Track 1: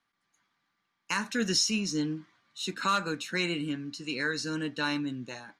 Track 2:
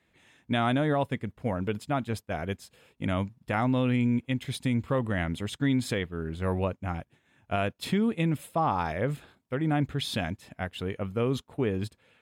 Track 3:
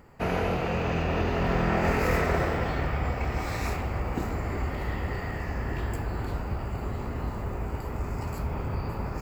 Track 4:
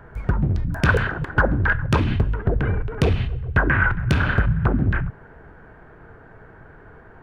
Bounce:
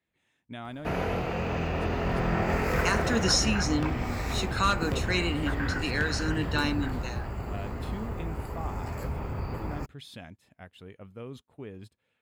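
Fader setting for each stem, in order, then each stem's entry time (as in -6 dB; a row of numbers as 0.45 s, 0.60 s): +1.5 dB, -14.0 dB, -2.5 dB, -15.5 dB; 1.75 s, 0.00 s, 0.65 s, 1.90 s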